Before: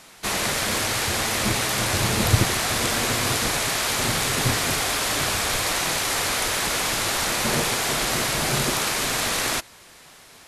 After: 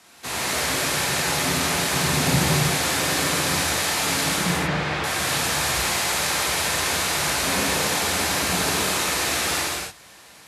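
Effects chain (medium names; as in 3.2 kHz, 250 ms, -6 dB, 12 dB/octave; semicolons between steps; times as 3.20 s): 4.36–5.04 s: low-pass 2.7 kHz 12 dB/octave; gated-style reverb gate 330 ms flat, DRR -6.5 dB; frequency shift +48 Hz; trim -6.5 dB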